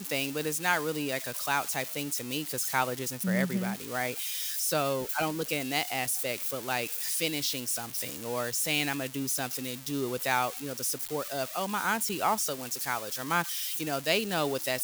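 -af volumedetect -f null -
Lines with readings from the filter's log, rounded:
mean_volume: -31.3 dB
max_volume: -11.6 dB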